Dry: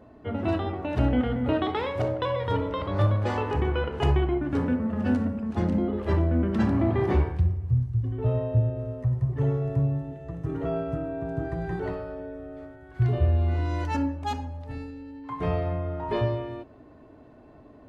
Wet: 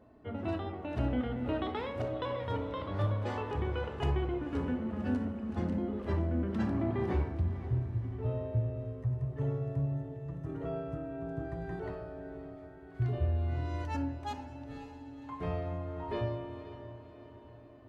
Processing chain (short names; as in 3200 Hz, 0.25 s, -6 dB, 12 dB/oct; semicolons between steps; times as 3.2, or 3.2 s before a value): diffused feedback echo 0.538 s, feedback 52%, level -12 dB; gain -8.5 dB